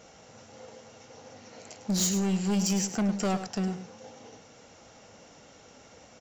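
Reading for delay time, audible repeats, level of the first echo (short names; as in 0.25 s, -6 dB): 0.104 s, 1, -11.0 dB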